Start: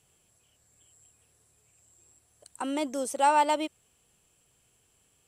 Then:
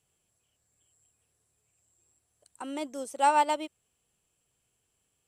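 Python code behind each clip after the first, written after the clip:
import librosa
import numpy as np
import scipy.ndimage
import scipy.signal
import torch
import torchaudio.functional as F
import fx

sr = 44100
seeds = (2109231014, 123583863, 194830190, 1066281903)

y = fx.upward_expand(x, sr, threshold_db=-37.0, expansion=1.5)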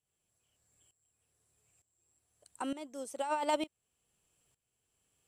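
y = fx.over_compress(x, sr, threshold_db=-28.0, ratio=-1.0)
y = fx.tremolo_shape(y, sr, shape='saw_up', hz=1.1, depth_pct=85)
y = F.gain(torch.from_numpy(y), -1.0).numpy()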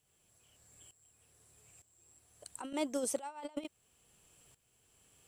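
y = fx.over_compress(x, sr, threshold_db=-42.0, ratio=-0.5)
y = F.gain(torch.from_numpy(y), 4.0).numpy()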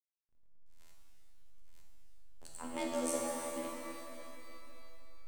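y = fx.robotise(x, sr, hz=82.8)
y = fx.backlash(y, sr, play_db=-43.5)
y = fx.rev_shimmer(y, sr, seeds[0], rt60_s=2.9, semitones=12, shimmer_db=-8, drr_db=-2.5)
y = F.gain(torch.from_numpy(y), -1.0).numpy()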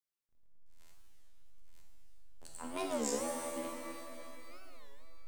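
y = fx.record_warp(x, sr, rpm=33.33, depth_cents=250.0)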